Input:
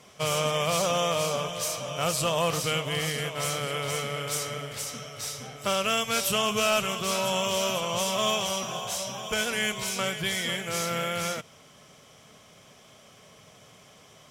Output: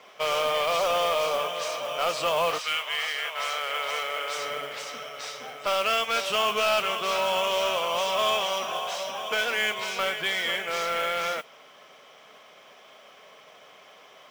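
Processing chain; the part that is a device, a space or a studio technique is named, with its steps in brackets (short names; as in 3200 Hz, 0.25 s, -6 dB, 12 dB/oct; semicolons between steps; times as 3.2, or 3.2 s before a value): 2.57–4.37 HPF 1300 Hz -> 450 Hz 12 dB/oct; carbon microphone (BPF 490–3300 Hz; soft clip -22.5 dBFS, distortion -15 dB; modulation noise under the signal 20 dB); gain +5.5 dB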